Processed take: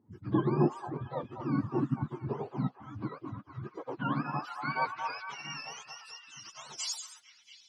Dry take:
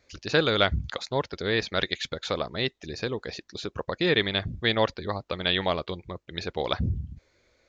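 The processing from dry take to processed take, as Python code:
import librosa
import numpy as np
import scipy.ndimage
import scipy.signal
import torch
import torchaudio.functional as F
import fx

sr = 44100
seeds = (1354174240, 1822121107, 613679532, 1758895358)

y = fx.octave_mirror(x, sr, pivot_hz=710.0)
y = fx.filter_sweep_bandpass(y, sr, from_hz=360.0, to_hz=5500.0, start_s=3.72, end_s=5.67, q=1.2)
y = fx.echo_stepped(y, sr, ms=227, hz=970.0, octaves=0.7, feedback_pct=70, wet_db=-4.0)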